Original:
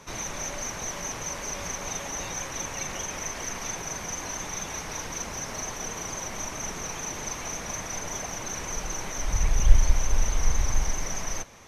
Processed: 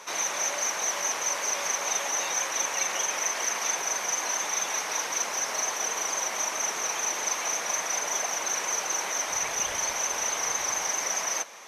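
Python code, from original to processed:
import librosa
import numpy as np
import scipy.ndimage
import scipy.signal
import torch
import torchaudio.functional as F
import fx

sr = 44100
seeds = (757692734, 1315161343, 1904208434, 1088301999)

y = scipy.signal.sosfilt(scipy.signal.butter(2, 560.0, 'highpass', fs=sr, output='sos'), x)
y = y * librosa.db_to_amplitude(6.0)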